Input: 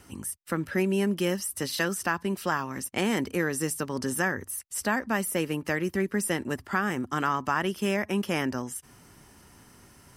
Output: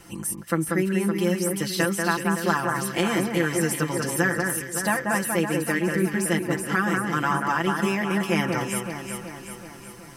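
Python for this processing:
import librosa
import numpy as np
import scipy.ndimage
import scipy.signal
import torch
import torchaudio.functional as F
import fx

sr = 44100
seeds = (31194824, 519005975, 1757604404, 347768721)

y = x + 0.83 * np.pad(x, (int(5.9 * sr / 1000.0), 0))[:len(x)]
y = fx.rider(y, sr, range_db=4, speed_s=0.5)
y = fx.echo_alternate(y, sr, ms=188, hz=2100.0, feedback_pct=74, wet_db=-3.5)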